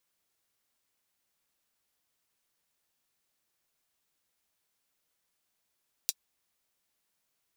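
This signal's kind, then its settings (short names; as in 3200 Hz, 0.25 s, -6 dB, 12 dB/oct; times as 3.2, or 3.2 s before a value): closed hi-hat, high-pass 4400 Hz, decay 0.05 s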